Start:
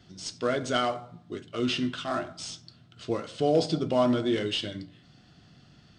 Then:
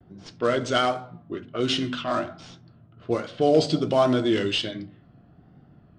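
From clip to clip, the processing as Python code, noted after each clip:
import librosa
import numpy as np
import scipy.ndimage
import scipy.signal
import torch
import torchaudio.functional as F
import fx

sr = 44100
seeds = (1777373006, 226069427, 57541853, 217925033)

y = fx.env_lowpass(x, sr, base_hz=850.0, full_db=-24.0)
y = fx.hum_notches(y, sr, base_hz=50, count=5)
y = fx.vibrato(y, sr, rate_hz=1.3, depth_cents=80.0)
y = y * 10.0 ** (4.5 / 20.0)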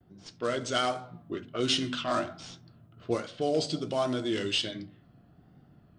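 y = fx.rider(x, sr, range_db=4, speed_s=0.5)
y = fx.high_shelf(y, sr, hz=4900.0, db=11.5)
y = y * 10.0 ** (-6.5 / 20.0)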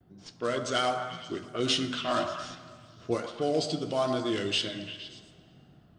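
y = fx.echo_stepped(x, sr, ms=116, hz=870.0, octaves=0.7, feedback_pct=70, wet_db=-5.5)
y = fx.rev_plate(y, sr, seeds[0], rt60_s=2.6, hf_ratio=0.75, predelay_ms=0, drr_db=13.5)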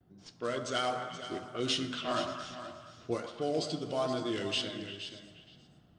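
y = x + 10.0 ** (-11.5 / 20.0) * np.pad(x, (int(477 * sr / 1000.0), 0))[:len(x)]
y = y * 10.0 ** (-4.5 / 20.0)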